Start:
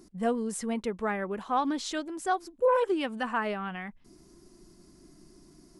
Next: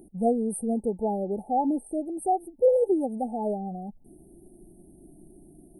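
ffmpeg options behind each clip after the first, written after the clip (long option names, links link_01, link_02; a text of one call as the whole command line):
ffmpeg -i in.wav -af "afftfilt=real='re*(1-between(b*sr/4096,880,8400))':imag='im*(1-between(b*sr/4096,880,8400))':win_size=4096:overlap=0.75,volume=4.5dB" out.wav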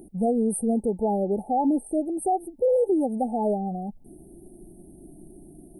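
ffmpeg -i in.wav -af "alimiter=limit=-20.5dB:level=0:latency=1:release=62,volume=4.5dB" out.wav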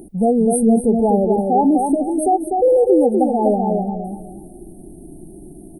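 ffmpeg -i in.wav -filter_complex "[0:a]asplit=2[link_01][link_02];[link_02]adelay=248,lowpass=frequency=3600:poles=1,volume=-4dB,asplit=2[link_03][link_04];[link_04]adelay=248,lowpass=frequency=3600:poles=1,volume=0.29,asplit=2[link_05][link_06];[link_06]adelay=248,lowpass=frequency=3600:poles=1,volume=0.29,asplit=2[link_07][link_08];[link_08]adelay=248,lowpass=frequency=3600:poles=1,volume=0.29[link_09];[link_01][link_03][link_05][link_07][link_09]amix=inputs=5:normalize=0,volume=7.5dB" out.wav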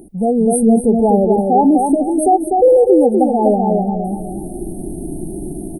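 ffmpeg -i in.wav -af "dynaudnorm=framelen=240:gausssize=3:maxgain=13.5dB,volume=-1dB" out.wav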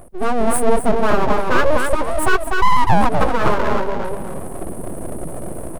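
ffmpeg -i in.wav -af "aeval=exprs='abs(val(0))':channel_layout=same" out.wav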